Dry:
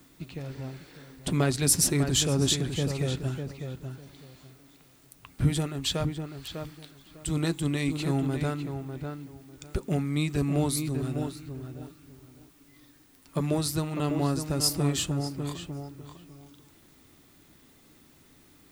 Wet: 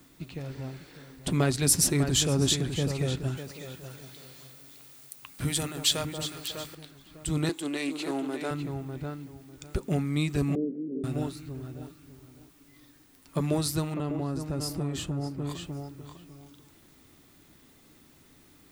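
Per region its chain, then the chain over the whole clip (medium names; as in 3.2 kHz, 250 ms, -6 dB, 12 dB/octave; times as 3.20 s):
3.37–6.75 s: tilt EQ +2.5 dB/octave + echo whose repeats swap between lows and highs 182 ms, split 1.2 kHz, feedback 62%, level -7 dB
7.49–8.51 s: high-pass 270 Hz 24 dB/octave + loudspeaker Doppler distortion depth 0.1 ms
10.55–11.04 s: one-bit delta coder 16 kbps, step -33.5 dBFS + elliptic band-pass 190–490 Hz + distance through air 330 m
13.94–15.50 s: treble shelf 2.2 kHz -9.5 dB + compression 4:1, threshold -27 dBFS
whole clip: none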